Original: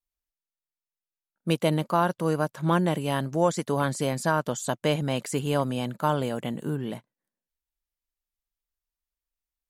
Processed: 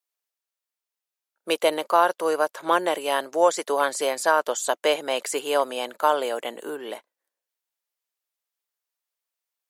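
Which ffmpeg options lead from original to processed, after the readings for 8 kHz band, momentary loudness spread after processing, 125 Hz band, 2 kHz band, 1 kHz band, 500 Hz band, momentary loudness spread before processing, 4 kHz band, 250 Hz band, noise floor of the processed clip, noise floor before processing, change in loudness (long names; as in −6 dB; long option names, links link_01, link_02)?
+5.5 dB, 12 LU, below −25 dB, +5.5 dB, +5.5 dB, +4.5 dB, 7 LU, +5.5 dB, −7.0 dB, below −85 dBFS, below −85 dBFS, +3.0 dB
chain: -af "highpass=frequency=410:width=0.5412,highpass=frequency=410:width=1.3066,volume=5.5dB"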